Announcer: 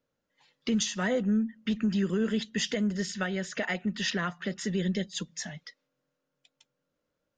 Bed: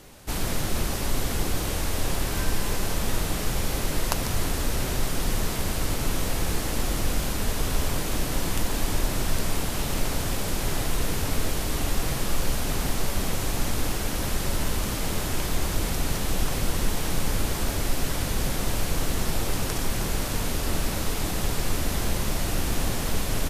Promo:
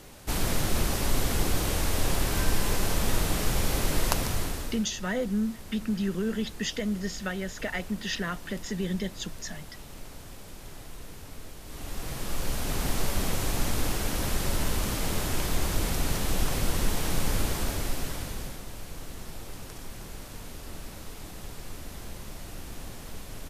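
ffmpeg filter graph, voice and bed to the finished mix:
ffmpeg -i stem1.wav -i stem2.wav -filter_complex "[0:a]adelay=4050,volume=-1.5dB[link_01];[1:a]volume=16dB,afade=type=out:start_time=4.1:duration=0.75:silence=0.133352,afade=type=in:start_time=11.62:duration=1.37:silence=0.158489,afade=type=out:start_time=17.4:duration=1.24:silence=0.223872[link_02];[link_01][link_02]amix=inputs=2:normalize=0" out.wav

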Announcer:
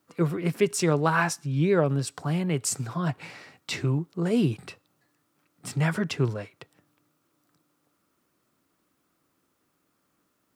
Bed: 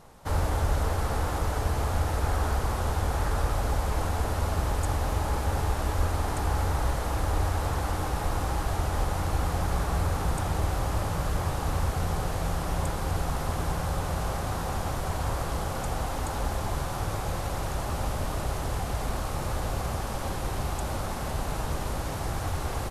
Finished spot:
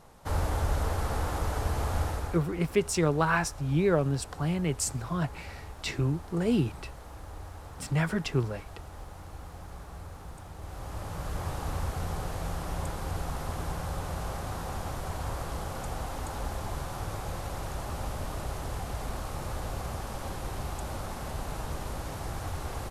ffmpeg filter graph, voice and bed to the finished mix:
ffmpeg -i stem1.wav -i stem2.wav -filter_complex "[0:a]adelay=2150,volume=-2.5dB[link_01];[1:a]volume=9dB,afade=type=out:start_time=2.03:duration=0.4:silence=0.199526,afade=type=in:start_time=10.57:duration=0.94:silence=0.266073[link_02];[link_01][link_02]amix=inputs=2:normalize=0" out.wav

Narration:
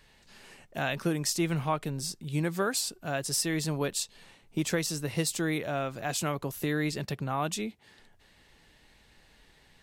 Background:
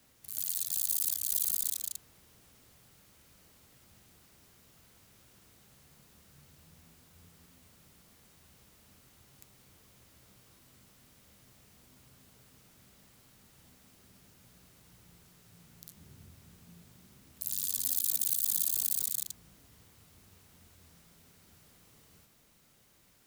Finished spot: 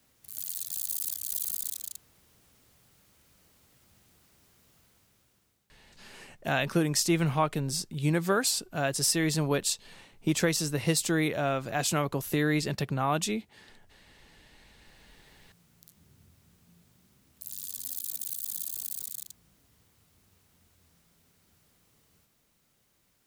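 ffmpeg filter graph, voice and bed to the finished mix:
ffmpeg -i stem1.wav -i stem2.wav -filter_complex "[0:a]adelay=5700,volume=3dB[link_01];[1:a]volume=10dB,afade=type=out:start_time=4.75:duration=0.95:silence=0.16788,afade=type=in:start_time=14.58:duration=0.79:silence=0.251189[link_02];[link_01][link_02]amix=inputs=2:normalize=0" out.wav

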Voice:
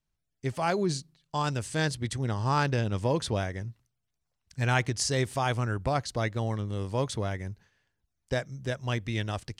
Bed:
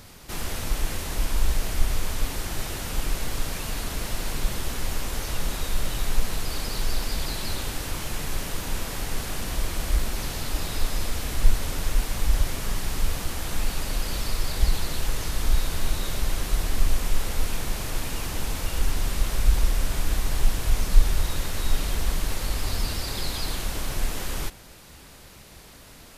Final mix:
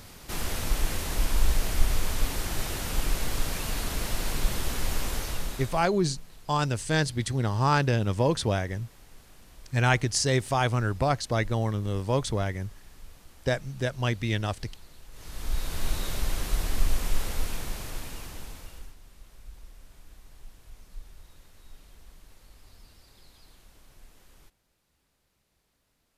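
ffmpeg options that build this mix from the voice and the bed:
ffmpeg -i stem1.wav -i stem2.wav -filter_complex "[0:a]adelay=5150,volume=3dB[link_01];[1:a]volume=19.5dB,afade=type=out:start_time=5.08:duration=0.81:silence=0.0749894,afade=type=in:start_time=15.11:duration=0.8:silence=0.1,afade=type=out:start_time=17.18:duration=1.78:silence=0.0668344[link_02];[link_01][link_02]amix=inputs=2:normalize=0" out.wav

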